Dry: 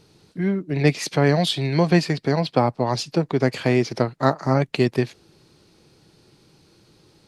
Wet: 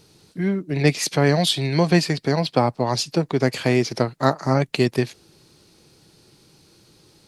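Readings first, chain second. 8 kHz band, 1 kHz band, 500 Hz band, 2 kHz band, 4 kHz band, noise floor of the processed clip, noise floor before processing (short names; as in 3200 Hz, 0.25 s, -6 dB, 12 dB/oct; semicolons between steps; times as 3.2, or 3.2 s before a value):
+5.5 dB, 0.0 dB, 0.0 dB, +1.0 dB, +3.0 dB, -56 dBFS, -58 dBFS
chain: high shelf 5300 Hz +9 dB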